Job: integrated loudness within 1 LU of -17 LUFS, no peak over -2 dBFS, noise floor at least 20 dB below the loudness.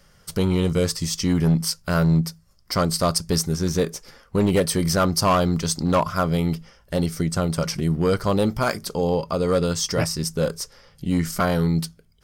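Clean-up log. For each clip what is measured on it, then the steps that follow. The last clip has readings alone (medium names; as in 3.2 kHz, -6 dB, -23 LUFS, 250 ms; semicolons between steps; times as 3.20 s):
clipped samples 1.0%; clipping level -12.5 dBFS; loudness -22.5 LUFS; peak level -12.5 dBFS; loudness target -17.0 LUFS
-> clip repair -12.5 dBFS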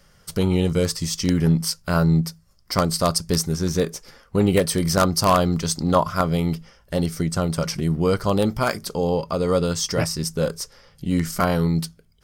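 clipped samples 0.0%; loudness -22.0 LUFS; peak level -3.5 dBFS; loudness target -17.0 LUFS
-> trim +5 dB; peak limiter -2 dBFS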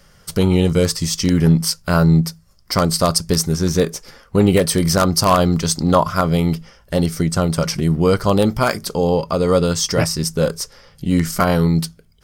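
loudness -17.5 LUFS; peak level -2.0 dBFS; noise floor -52 dBFS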